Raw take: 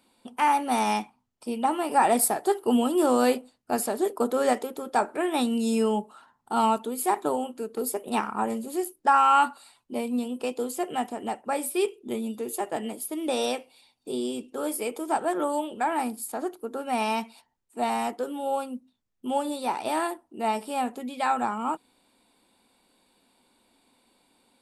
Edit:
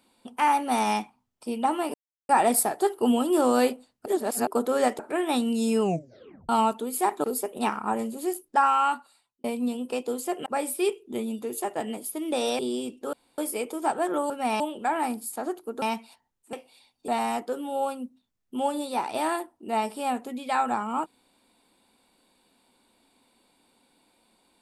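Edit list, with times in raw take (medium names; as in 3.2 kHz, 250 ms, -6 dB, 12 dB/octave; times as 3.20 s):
1.94 s: insert silence 0.35 s
3.71–4.12 s: reverse
4.64–5.04 s: delete
5.86 s: tape stop 0.68 s
7.29–7.75 s: delete
8.99–9.95 s: fade out
10.97–11.42 s: delete
13.55–14.10 s: move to 17.79 s
14.64 s: insert room tone 0.25 s
16.78–17.08 s: move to 15.56 s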